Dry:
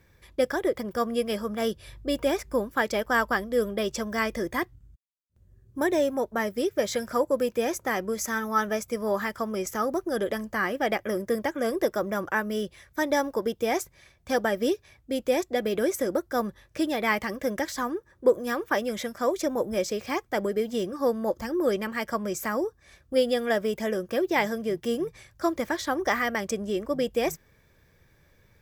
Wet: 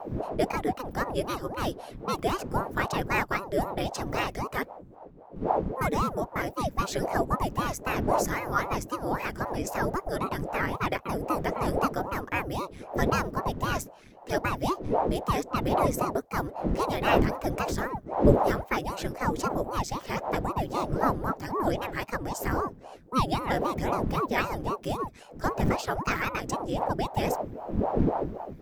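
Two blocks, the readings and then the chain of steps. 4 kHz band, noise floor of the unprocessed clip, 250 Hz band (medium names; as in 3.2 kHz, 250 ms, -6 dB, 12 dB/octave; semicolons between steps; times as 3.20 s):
-2.5 dB, -62 dBFS, -1.5 dB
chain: wind noise 170 Hz -30 dBFS; ring modulator with a swept carrier 430 Hz, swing 85%, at 3.8 Hz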